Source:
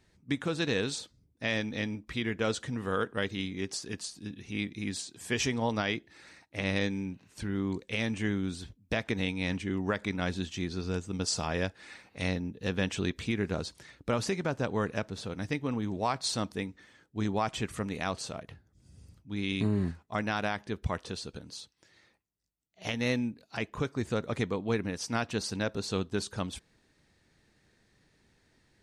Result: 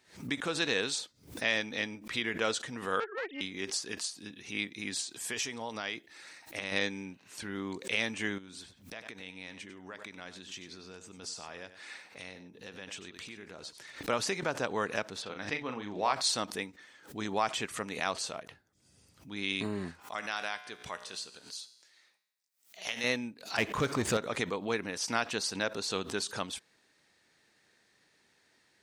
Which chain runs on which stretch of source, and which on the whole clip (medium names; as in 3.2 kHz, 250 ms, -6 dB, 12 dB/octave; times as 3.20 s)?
3.00–3.41 s: formants replaced by sine waves + valve stage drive 30 dB, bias 0.5
5.14–6.72 s: treble shelf 6.7 kHz +5.5 dB + compression, threshold -32 dBFS
8.38–14.03 s: compression 4:1, threshold -42 dBFS + delay 96 ms -12 dB
15.22–16.13 s: low-pass 4.5 kHz + bass shelf 350 Hz -4.5 dB + doubling 39 ms -6.5 dB
20.00–23.04 s: tilt EQ +2 dB/octave + feedback comb 61 Hz, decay 0.91 s
23.58–24.17 s: bass shelf 200 Hz +10.5 dB + power-law waveshaper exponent 0.7
whole clip: high-pass 700 Hz 6 dB/octave; swell ahead of each attack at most 140 dB/s; trim +3 dB